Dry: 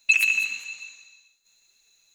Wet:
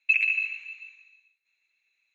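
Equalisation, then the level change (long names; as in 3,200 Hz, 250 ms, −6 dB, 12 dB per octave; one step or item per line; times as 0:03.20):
resonant band-pass 2,300 Hz, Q 6.7
spectral tilt −4 dB per octave
+8.5 dB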